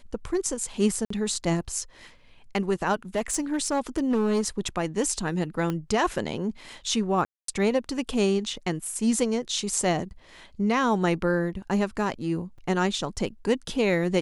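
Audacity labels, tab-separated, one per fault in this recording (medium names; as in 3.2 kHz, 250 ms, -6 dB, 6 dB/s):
1.050000	1.100000	dropout 54 ms
3.150000	4.480000	clipped -19.5 dBFS
5.700000	5.700000	pop -16 dBFS
7.250000	7.480000	dropout 233 ms
12.580000	12.580000	dropout 4.6 ms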